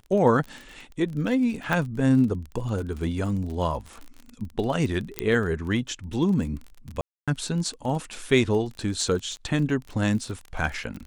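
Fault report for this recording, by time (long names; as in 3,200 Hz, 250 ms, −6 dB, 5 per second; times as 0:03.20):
surface crackle 27 per second −32 dBFS
0:01.73: click −12 dBFS
0:05.19: click −8 dBFS
0:07.01–0:07.28: drop-out 266 ms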